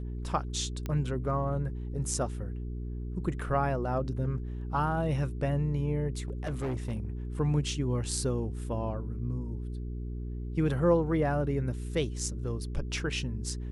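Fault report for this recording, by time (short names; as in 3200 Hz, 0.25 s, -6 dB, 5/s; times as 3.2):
hum 60 Hz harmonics 7 -36 dBFS
0.86 pop -21 dBFS
6.28–7.05 clipped -28.5 dBFS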